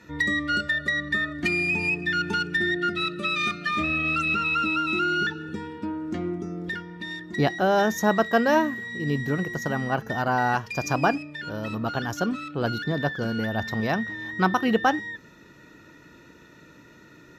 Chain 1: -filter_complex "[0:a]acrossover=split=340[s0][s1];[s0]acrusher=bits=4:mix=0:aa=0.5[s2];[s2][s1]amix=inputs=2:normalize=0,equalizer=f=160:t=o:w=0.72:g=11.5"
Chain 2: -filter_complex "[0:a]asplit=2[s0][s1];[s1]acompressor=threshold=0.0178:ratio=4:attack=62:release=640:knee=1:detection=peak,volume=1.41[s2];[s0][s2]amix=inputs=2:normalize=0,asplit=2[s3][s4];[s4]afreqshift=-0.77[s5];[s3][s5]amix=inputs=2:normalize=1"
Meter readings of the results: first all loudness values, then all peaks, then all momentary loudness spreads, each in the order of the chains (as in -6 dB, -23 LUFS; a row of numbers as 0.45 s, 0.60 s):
-23.5 LUFS, -25.0 LUFS; -4.0 dBFS, -8.0 dBFS; 11 LU, 10 LU